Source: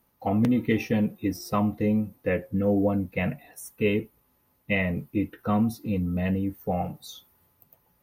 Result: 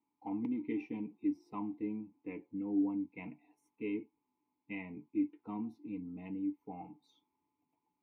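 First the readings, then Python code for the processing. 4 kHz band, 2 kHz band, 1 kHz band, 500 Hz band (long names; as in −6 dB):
below −20 dB, −19.5 dB, −16.5 dB, −19.0 dB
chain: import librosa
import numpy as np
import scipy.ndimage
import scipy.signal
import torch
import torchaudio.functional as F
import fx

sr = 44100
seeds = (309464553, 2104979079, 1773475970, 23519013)

y = fx.vowel_filter(x, sr, vowel='u')
y = fx.small_body(y, sr, hz=(450.0, 640.0, 990.0), ring_ms=45, db=7)
y = y * 10.0 ** (-4.0 / 20.0)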